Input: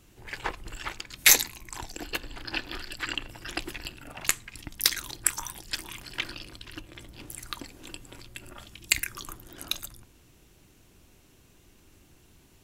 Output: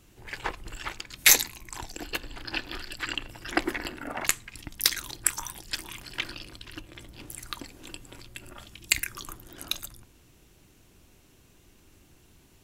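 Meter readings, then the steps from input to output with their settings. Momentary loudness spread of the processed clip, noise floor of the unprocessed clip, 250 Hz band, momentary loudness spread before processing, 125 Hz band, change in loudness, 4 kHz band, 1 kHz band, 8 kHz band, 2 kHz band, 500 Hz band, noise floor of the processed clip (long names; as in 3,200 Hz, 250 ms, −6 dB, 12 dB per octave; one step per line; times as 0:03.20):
19 LU, −59 dBFS, +4.0 dB, 19 LU, 0.0 dB, 0.0 dB, 0.0 dB, +2.0 dB, 0.0 dB, +0.5 dB, +3.0 dB, −59 dBFS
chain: gain on a spectral selection 0:03.52–0:04.27, 200–2,300 Hz +10 dB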